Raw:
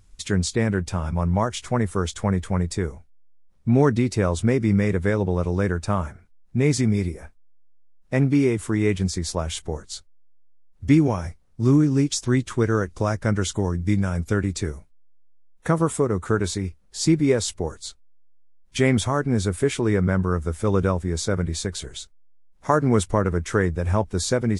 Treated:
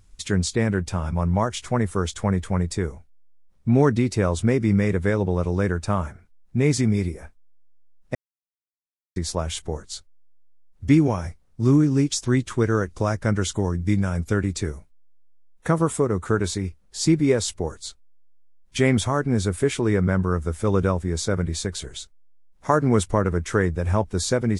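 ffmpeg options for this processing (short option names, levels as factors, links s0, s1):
-filter_complex "[0:a]asplit=3[s0][s1][s2];[s0]atrim=end=8.15,asetpts=PTS-STARTPTS,afade=t=out:st=8.146:d=0.004:c=hsin[s3];[s1]atrim=start=8.15:end=9.16,asetpts=PTS-STARTPTS,volume=0[s4];[s2]atrim=start=9.16,asetpts=PTS-STARTPTS,afade=t=in:d=0.004:c=hsin[s5];[s3][s4][s5]concat=n=3:v=0:a=1"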